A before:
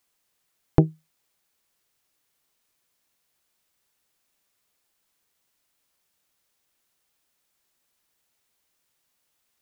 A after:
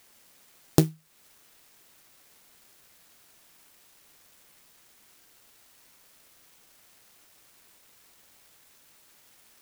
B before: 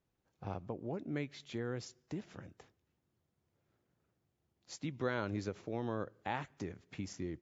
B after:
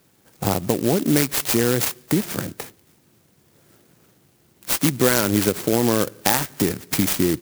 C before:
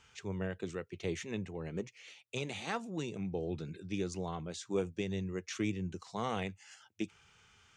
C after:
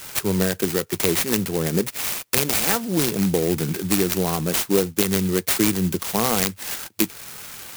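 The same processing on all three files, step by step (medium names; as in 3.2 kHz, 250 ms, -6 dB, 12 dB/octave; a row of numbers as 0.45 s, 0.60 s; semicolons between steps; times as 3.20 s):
frequency weighting D; compression 2:1, threshold -41 dBFS; peaking EQ 160 Hz +4.5 dB 2.5 oct; sampling jitter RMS 0.11 ms; peak normalisation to -1.5 dBFS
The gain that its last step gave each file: +11.0 dB, +22.0 dB, +19.0 dB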